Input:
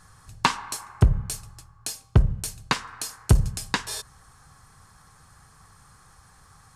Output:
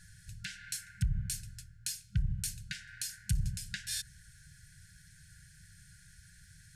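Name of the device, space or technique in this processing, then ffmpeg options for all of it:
stacked limiters: -af "alimiter=limit=-10dB:level=0:latency=1:release=329,alimiter=limit=-15.5dB:level=0:latency=1:release=230,alimiter=limit=-20dB:level=0:latency=1:release=156,afftfilt=real='re*(1-between(b*sr/4096,200,1400))':imag='im*(1-between(b*sr/4096,200,1400))':win_size=4096:overlap=0.75,volume=-2dB"

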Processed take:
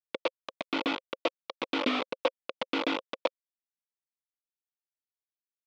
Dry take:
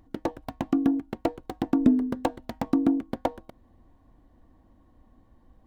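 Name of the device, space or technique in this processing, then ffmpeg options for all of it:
hand-held game console: -af "acrusher=bits=3:mix=0:aa=0.000001,highpass=460,equalizer=frequency=530:width_type=q:width=4:gain=10,equalizer=frequency=780:width_type=q:width=4:gain=-9,equalizer=frequency=1100:width_type=q:width=4:gain=4,equalizer=frequency=1700:width_type=q:width=4:gain=-8,equalizer=frequency=2400:width_type=q:width=4:gain=5,equalizer=frequency=3400:width_type=q:width=4:gain=5,lowpass=frequency=4100:width=0.5412,lowpass=frequency=4100:width=1.3066,volume=-2.5dB"

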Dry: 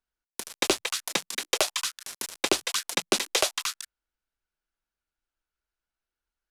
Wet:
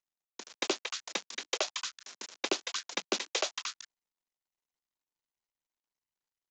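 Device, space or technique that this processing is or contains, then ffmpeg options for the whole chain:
Bluetooth headset: -af "highpass=frequency=210:width=0.5412,highpass=frequency=210:width=1.3066,aresample=16000,aresample=44100,volume=-7dB" -ar 16000 -c:a sbc -b:a 64k

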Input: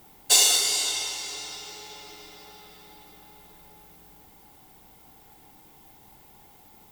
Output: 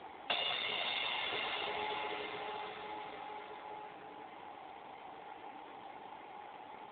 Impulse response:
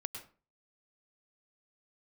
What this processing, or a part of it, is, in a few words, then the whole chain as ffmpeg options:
voicemail: -af "highpass=400,lowpass=3000,acompressor=threshold=-40dB:ratio=8,volume=11.5dB" -ar 8000 -c:a libopencore_amrnb -b:a 7400

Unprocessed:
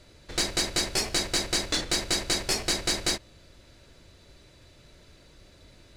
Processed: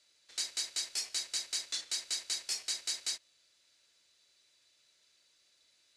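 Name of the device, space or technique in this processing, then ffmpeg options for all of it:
piezo pickup straight into a mixer: -af "lowpass=7500,aderivative,volume=-3.5dB"

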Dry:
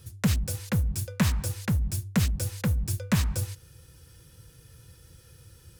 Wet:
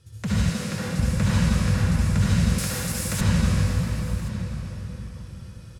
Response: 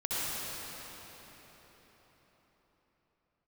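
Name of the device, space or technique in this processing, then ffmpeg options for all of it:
cathedral: -filter_complex "[0:a]lowpass=8000[link_01];[1:a]atrim=start_sample=2205[link_02];[link_01][link_02]afir=irnorm=-1:irlink=0,asettb=1/sr,asplit=3[link_03][link_04][link_05];[link_03]atrim=end=0.504[link_06];[link_04]atrim=start=0.5:end=0.99,asetpts=PTS-STARTPTS,afade=type=in:duration=0.004:curve=qsin,afade=type=out:start_time=0.486:duration=0.004:curve=qsin,highpass=200[link_07];[link_05]atrim=start=0.986[link_08];[link_06][link_07]acrossfade=duration=0.004:curve1=hsin:curve2=qsin[link_09];[link_09][link_08]acrossfade=duration=0.004:curve1=qsin:curve2=hsin,asettb=1/sr,asplit=3[link_10][link_11][link_12];[link_10]atrim=end=2.584[link_13];[link_11]atrim=start=2.58:end=3.21,asetpts=PTS-STARTPTS,afade=type=in:duration=0.004:curve=qsin,afade=type=out:start_time=0.626:duration=0.004:curve=qsin,aemphasis=mode=production:type=bsi[link_14];[link_12]atrim=start=3.206[link_15];[link_13][link_14]acrossfade=duration=0.004:curve1=hsin:curve2=qsin[link_16];[link_16][link_15]acrossfade=duration=0.004:curve1=qsin:curve2=hsin,aecho=1:1:1076:0.126,volume=-3dB"

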